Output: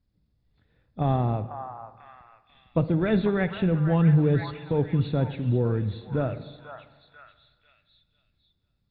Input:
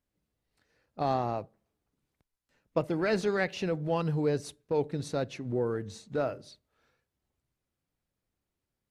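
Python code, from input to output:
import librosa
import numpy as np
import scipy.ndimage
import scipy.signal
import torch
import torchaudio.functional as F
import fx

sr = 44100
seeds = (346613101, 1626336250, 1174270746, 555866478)

p1 = fx.freq_compress(x, sr, knee_hz=3300.0, ratio=4.0)
p2 = fx.bass_treble(p1, sr, bass_db=15, treble_db=-10)
p3 = p2 + fx.echo_stepped(p2, sr, ms=493, hz=1100.0, octaves=0.7, feedback_pct=70, wet_db=-4, dry=0)
y = fx.rev_spring(p3, sr, rt60_s=1.6, pass_ms=(36, 55, 59), chirp_ms=30, drr_db=13.0)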